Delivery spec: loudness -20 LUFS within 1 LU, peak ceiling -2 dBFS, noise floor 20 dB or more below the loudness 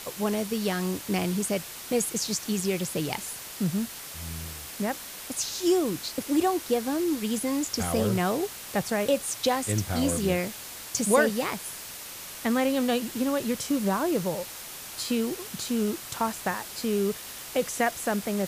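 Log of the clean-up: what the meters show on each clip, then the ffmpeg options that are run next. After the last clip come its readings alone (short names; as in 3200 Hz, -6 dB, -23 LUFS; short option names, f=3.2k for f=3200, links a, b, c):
noise floor -41 dBFS; noise floor target -48 dBFS; loudness -28.0 LUFS; peak -7.5 dBFS; loudness target -20.0 LUFS
-> -af "afftdn=nr=7:nf=-41"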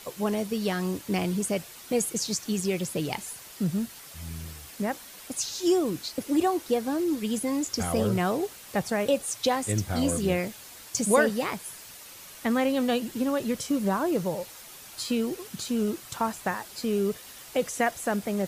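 noise floor -46 dBFS; noise floor target -48 dBFS
-> -af "afftdn=nr=6:nf=-46"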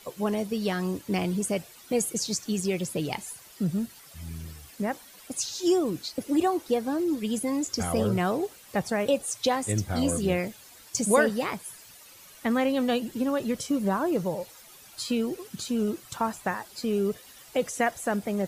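noise floor -51 dBFS; loudness -28.5 LUFS; peak -8.0 dBFS; loudness target -20.0 LUFS
-> -af "volume=8.5dB,alimiter=limit=-2dB:level=0:latency=1"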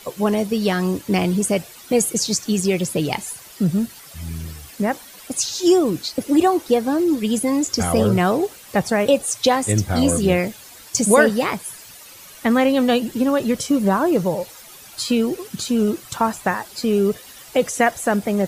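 loudness -20.0 LUFS; peak -2.0 dBFS; noise floor -42 dBFS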